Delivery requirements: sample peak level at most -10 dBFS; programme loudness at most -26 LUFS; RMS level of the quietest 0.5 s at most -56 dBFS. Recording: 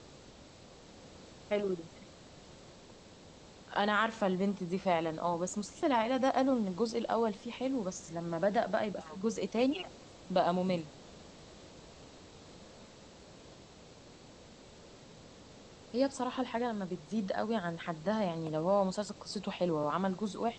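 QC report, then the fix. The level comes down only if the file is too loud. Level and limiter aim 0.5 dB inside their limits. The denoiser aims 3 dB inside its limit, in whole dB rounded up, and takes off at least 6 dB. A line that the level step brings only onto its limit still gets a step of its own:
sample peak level -16.0 dBFS: OK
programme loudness -33.5 LUFS: OK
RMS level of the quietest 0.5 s -55 dBFS: fail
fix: denoiser 6 dB, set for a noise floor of -55 dBFS

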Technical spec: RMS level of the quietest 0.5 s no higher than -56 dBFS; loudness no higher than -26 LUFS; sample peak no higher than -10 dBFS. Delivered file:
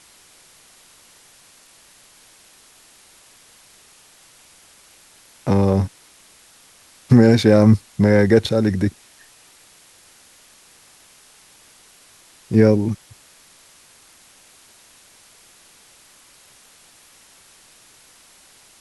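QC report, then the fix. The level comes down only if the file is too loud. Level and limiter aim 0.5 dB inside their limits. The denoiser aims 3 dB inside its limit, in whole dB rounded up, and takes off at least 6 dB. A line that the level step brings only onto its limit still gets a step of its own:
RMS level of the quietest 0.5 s -51 dBFS: fail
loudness -16.5 LUFS: fail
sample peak -2.0 dBFS: fail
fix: gain -10 dB

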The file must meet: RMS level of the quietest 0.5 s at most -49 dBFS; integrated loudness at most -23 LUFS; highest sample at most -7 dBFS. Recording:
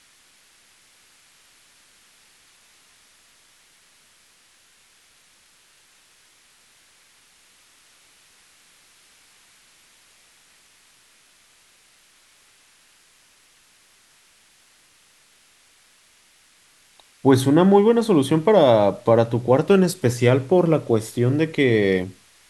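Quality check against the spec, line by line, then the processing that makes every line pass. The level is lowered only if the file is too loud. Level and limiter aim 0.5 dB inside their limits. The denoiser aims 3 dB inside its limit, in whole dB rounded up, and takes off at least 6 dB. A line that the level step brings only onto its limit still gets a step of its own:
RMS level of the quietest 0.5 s -57 dBFS: OK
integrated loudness -18.0 LUFS: fail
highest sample -3.5 dBFS: fail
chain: gain -5.5 dB

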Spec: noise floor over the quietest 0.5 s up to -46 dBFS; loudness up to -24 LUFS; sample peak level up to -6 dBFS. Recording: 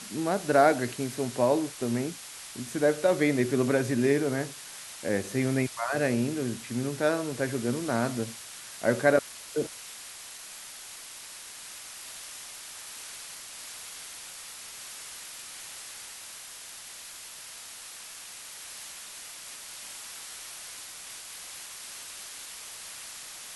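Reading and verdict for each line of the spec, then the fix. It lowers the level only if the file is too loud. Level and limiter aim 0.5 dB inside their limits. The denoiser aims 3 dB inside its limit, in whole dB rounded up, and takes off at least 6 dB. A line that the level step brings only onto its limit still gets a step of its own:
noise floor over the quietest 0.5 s -44 dBFS: fail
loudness -31.5 LUFS: OK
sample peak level -7.5 dBFS: OK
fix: denoiser 6 dB, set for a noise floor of -44 dBFS

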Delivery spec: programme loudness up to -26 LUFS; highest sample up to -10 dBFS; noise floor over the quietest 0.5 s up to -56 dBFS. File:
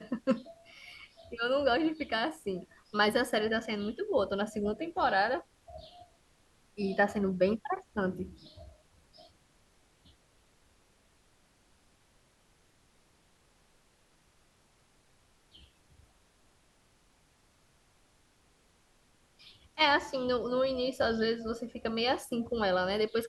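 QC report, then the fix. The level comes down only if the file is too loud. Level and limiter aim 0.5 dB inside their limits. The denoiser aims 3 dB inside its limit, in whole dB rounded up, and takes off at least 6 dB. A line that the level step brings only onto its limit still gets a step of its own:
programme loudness -31.0 LUFS: OK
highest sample -13.0 dBFS: OK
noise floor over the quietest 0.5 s -67 dBFS: OK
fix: none

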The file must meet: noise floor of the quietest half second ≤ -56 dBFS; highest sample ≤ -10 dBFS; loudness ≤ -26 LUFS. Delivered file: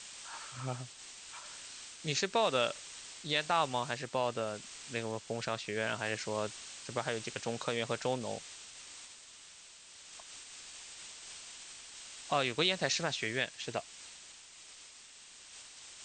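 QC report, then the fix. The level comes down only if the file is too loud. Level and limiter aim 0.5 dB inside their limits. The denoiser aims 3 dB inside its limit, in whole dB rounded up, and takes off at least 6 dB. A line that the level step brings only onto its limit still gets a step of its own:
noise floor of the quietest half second -55 dBFS: fail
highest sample -15.0 dBFS: OK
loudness -36.0 LUFS: OK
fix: denoiser 6 dB, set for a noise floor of -55 dBFS

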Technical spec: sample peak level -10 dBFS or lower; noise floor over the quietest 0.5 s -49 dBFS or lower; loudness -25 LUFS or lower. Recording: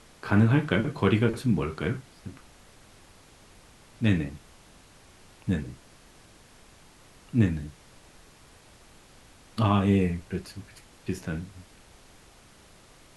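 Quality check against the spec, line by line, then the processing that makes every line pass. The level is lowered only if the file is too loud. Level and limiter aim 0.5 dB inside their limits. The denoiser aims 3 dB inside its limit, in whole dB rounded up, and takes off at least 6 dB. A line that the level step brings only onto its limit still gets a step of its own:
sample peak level -7.0 dBFS: fail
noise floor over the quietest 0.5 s -54 dBFS: OK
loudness -27.0 LUFS: OK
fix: limiter -10.5 dBFS

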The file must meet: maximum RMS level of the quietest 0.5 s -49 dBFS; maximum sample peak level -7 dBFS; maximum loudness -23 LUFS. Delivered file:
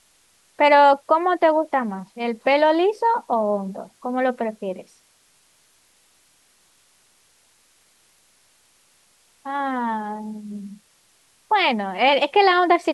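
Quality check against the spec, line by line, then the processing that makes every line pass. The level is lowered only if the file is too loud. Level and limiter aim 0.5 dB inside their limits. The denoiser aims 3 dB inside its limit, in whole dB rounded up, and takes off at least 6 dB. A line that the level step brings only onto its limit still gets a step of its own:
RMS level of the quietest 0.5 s -60 dBFS: OK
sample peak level -5.5 dBFS: fail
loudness -20.0 LUFS: fail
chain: gain -3.5 dB

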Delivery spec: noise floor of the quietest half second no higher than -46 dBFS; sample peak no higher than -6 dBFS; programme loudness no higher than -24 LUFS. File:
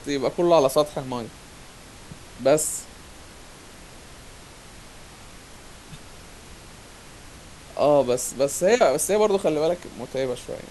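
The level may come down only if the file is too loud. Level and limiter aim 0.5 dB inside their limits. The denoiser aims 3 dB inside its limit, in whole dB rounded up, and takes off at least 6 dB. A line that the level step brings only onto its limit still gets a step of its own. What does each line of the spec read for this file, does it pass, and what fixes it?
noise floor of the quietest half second -44 dBFS: fail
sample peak -5.0 dBFS: fail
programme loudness -22.5 LUFS: fail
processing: denoiser 6 dB, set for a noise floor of -44 dBFS; gain -2 dB

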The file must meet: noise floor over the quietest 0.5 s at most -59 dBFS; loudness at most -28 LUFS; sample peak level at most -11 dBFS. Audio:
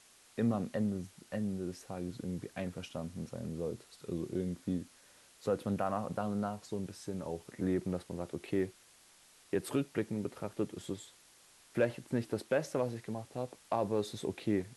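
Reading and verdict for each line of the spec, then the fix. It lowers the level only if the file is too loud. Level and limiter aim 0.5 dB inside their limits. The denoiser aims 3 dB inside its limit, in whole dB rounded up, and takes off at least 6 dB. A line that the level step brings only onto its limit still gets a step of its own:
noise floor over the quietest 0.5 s -62 dBFS: OK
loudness -37.5 LUFS: OK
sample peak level -18.5 dBFS: OK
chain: none

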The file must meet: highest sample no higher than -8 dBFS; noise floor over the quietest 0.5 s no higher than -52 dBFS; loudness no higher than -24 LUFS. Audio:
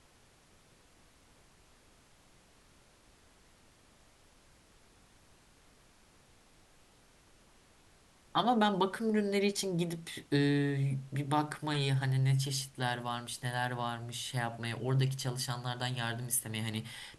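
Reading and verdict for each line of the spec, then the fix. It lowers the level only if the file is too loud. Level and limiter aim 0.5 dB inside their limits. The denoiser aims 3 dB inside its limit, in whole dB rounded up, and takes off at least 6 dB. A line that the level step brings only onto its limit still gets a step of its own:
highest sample -15.5 dBFS: OK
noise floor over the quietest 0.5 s -63 dBFS: OK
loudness -33.5 LUFS: OK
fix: none

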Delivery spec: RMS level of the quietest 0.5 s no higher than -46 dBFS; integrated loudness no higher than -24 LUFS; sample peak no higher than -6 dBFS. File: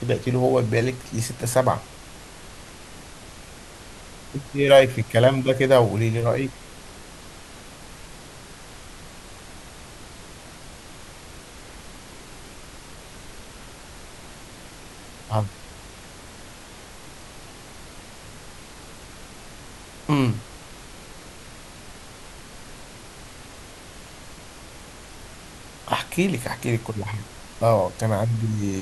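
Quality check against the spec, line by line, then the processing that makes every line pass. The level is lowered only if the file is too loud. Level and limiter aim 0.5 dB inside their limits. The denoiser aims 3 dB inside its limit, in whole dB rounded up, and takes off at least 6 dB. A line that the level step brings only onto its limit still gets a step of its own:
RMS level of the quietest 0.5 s -42 dBFS: fail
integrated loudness -22.5 LUFS: fail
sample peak -3.0 dBFS: fail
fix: denoiser 6 dB, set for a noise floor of -42 dBFS; gain -2 dB; limiter -6.5 dBFS

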